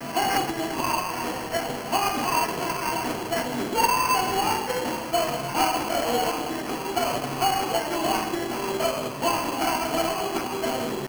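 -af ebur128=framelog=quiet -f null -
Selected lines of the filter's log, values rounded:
Integrated loudness:
  I:         -25.4 LUFS
  Threshold: -35.4 LUFS
Loudness range:
  LRA:         1.9 LU
  Threshold: -45.2 LUFS
  LRA low:   -26.1 LUFS
  LRA high:  -24.2 LUFS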